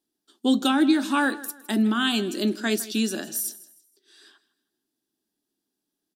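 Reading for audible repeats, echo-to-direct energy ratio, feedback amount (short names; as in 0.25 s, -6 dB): 2, -17.5 dB, 34%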